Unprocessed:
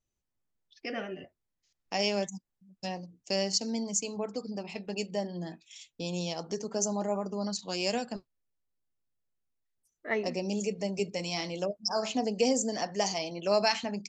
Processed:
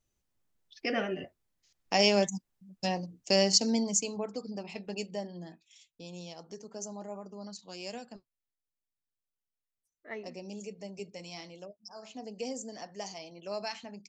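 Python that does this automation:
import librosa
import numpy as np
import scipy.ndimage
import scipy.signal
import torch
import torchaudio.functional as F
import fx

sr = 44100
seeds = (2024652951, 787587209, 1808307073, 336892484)

y = fx.gain(x, sr, db=fx.line((3.71, 5.0), (4.3, -2.0), (4.92, -2.0), (5.9, -10.5), (11.38, -10.5), (11.91, -18.0), (12.35, -11.0)))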